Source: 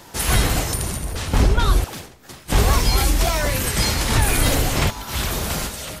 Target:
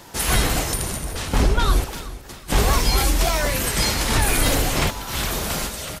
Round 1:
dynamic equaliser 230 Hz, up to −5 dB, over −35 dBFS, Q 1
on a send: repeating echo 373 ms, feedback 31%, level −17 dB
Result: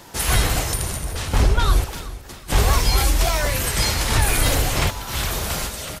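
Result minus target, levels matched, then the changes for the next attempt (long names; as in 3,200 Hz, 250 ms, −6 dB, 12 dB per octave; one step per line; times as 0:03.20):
250 Hz band −3.5 dB
change: dynamic equaliser 91 Hz, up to −5 dB, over −35 dBFS, Q 1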